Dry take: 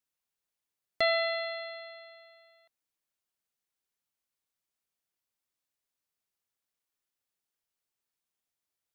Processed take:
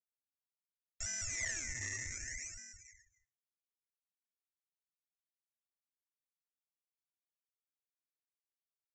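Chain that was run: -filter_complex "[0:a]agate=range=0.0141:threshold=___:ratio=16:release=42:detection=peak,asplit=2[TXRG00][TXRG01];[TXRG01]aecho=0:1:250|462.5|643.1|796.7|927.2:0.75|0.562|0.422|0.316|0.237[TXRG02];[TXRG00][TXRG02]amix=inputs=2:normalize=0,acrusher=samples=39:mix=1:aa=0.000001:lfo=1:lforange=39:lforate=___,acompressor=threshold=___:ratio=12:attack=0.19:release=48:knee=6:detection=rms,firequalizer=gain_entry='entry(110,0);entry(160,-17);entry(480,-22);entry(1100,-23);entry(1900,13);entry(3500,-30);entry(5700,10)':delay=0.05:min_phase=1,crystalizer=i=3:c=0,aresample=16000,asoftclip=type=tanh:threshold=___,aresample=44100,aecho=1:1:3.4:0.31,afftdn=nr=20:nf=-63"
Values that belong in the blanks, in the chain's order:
0.00112, 0.66, 0.0158, 0.0237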